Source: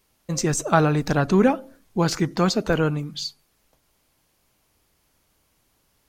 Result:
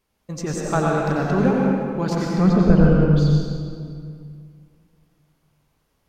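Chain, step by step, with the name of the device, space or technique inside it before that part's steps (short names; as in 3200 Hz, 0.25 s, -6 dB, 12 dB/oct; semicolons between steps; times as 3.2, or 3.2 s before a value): 2.37–3.09 RIAA curve playback; swimming-pool hall (reverb RT60 2.2 s, pre-delay 84 ms, DRR -2.5 dB; high shelf 3400 Hz -7.5 dB); gain -4.5 dB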